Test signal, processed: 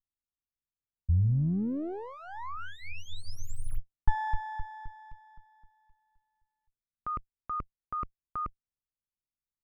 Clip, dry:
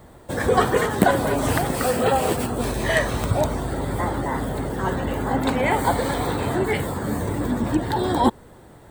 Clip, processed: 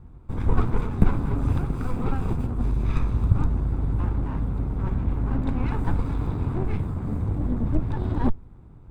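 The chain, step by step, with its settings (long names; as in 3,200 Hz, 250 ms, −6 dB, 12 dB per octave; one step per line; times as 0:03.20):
lower of the sound and its delayed copy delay 0.82 ms
spectral tilt −4.5 dB per octave
amplitude modulation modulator 89 Hz, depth 15%
level −11 dB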